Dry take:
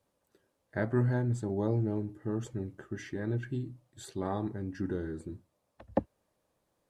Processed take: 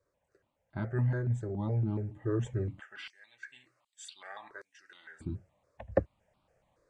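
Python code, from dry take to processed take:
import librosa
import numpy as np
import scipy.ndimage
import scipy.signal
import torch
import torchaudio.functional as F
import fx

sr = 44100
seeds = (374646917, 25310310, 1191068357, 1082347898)

y = fx.rider(x, sr, range_db=4, speed_s=0.5)
y = scipy.signal.sosfilt(scipy.signal.butter(4, 8000.0, 'lowpass', fs=sr, output='sos'), y)
y = fx.high_shelf(y, sr, hz=5200.0, db=-6.0)
y = fx.filter_lfo_highpass(y, sr, shape='saw_down', hz=1.3, low_hz=950.0, high_hz=5900.0, q=1.4, at=(2.78, 5.2), fade=0.02)
y = fx.dynamic_eq(y, sr, hz=660.0, q=1.1, threshold_db=-47.0, ratio=4.0, max_db=-5)
y = fx.phaser_held(y, sr, hz=7.1, low_hz=810.0, high_hz=1800.0)
y = y * librosa.db_to_amplitude(5.5)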